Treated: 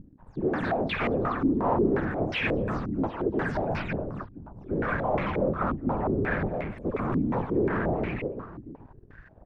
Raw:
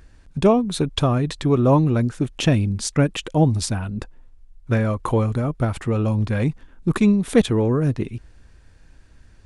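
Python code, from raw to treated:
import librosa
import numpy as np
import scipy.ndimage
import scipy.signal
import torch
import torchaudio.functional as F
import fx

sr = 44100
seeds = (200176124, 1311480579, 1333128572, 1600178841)

y = fx.spec_delay(x, sr, highs='early', ms=160)
y = fx.low_shelf(y, sr, hz=170.0, db=-8.0)
y = fx.vibrato(y, sr, rate_hz=0.38, depth_cents=60.0)
y = fx.whisperise(y, sr, seeds[0])
y = np.clip(10.0 ** (19.5 / 20.0) * y, -1.0, 1.0) / 10.0 ** (19.5 / 20.0)
y = fx.leveller(y, sr, passes=3)
y = fx.echo_multitap(y, sr, ms=(75, 226, 672), db=(-13.5, -3.0, -14.0))
y = fx.filter_held_lowpass(y, sr, hz=5.6, low_hz=290.0, high_hz=2200.0)
y = y * 10.0 ** (-9.0 / 20.0)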